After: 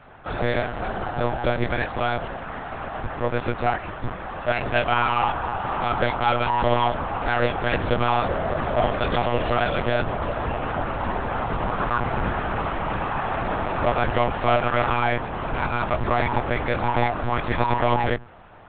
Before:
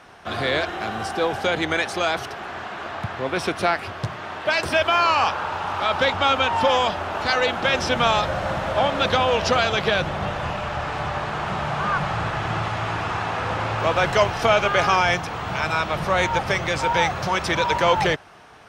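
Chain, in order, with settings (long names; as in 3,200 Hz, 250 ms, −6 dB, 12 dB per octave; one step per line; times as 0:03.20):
low-pass filter 1,300 Hz 6 dB per octave
hum removal 51.34 Hz, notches 5
in parallel at −8.5 dB: wave folding −22 dBFS
on the sum: multi-voice chorus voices 2, 1.1 Hz, delay 14 ms, depth 3 ms
one-pitch LPC vocoder at 8 kHz 120 Hz
level +2.5 dB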